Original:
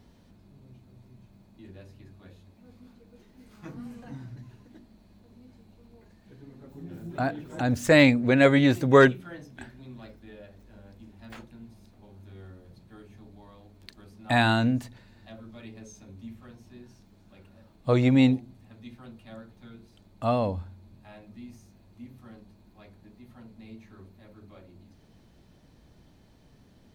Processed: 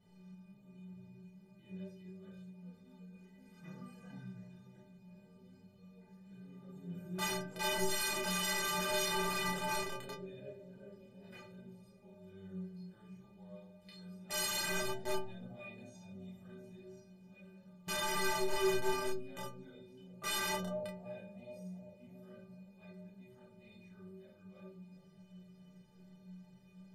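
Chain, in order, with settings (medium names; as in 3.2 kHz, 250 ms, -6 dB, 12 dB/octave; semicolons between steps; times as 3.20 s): graphic EQ 125/500/2000 Hz +9/+7/+4 dB; bucket-brigade echo 365 ms, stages 2048, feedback 62%, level -14.5 dB; reverberation RT60 0.40 s, pre-delay 3 ms, DRR -2.5 dB; compression 4:1, threshold -14 dBFS, peak gain reduction 11.5 dB; integer overflow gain 19 dB; chorus voices 2, 0.48 Hz, delay 30 ms, depth 4.8 ms; inharmonic resonator 180 Hz, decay 0.54 s, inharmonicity 0.03; trim +6.5 dB; MP3 56 kbps 32 kHz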